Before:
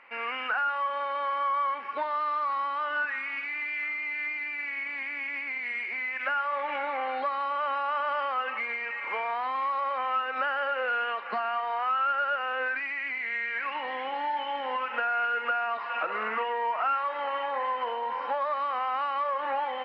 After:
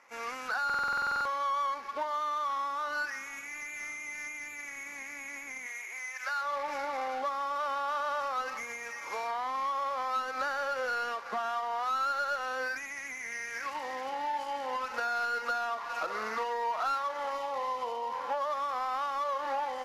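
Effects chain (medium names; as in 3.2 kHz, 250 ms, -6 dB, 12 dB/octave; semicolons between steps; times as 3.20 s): median filter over 15 samples; 5.66–6.40 s: high-pass 500 Hz -> 910 Hz 12 dB/octave; 17.34–18.14 s: peaking EQ 1.6 kHz -13 dB 0.31 oct; buffer glitch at 0.65 s, samples 2048, times 12; trim -2.5 dB; Vorbis 48 kbps 32 kHz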